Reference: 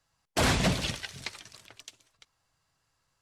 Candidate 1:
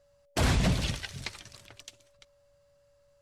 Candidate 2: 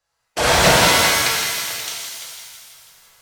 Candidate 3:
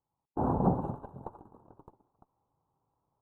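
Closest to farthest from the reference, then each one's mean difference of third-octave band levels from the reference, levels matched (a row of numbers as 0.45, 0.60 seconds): 1, 2, 3; 2.0, 11.5, 16.5 decibels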